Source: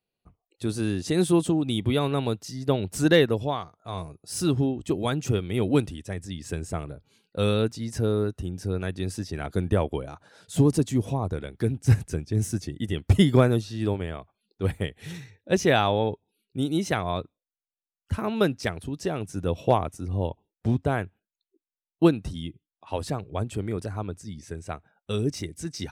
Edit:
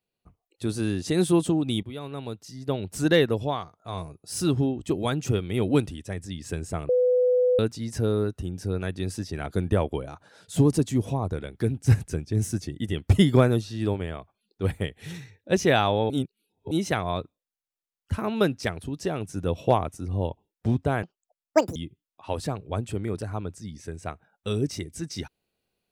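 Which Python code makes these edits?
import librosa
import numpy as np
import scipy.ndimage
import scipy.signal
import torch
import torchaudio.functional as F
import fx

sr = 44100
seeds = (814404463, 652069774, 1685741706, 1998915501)

y = fx.edit(x, sr, fx.fade_in_from(start_s=1.83, length_s=1.6, floor_db=-16.0),
    fx.bleep(start_s=6.89, length_s=0.7, hz=499.0, db=-17.5),
    fx.reverse_span(start_s=16.1, length_s=0.61),
    fx.speed_span(start_s=21.03, length_s=1.36, speed=1.87), tone=tone)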